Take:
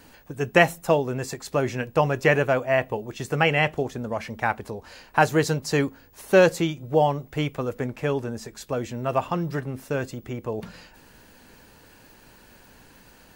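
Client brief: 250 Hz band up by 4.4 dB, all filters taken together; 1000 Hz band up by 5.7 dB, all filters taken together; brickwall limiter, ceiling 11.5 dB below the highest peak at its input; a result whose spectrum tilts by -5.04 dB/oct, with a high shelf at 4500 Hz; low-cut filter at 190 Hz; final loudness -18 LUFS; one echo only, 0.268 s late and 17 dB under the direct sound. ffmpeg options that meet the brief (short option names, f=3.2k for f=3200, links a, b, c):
-af "highpass=190,equalizer=f=250:t=o:g=7.5,equalizer=f=1k:t=o:g=7.5,highshelf=f=4.5k:g=-4.5,alimiter=limit=-10dB:level=0:latency=1,aecho=1:1:268:0.141,volume=6.5dB"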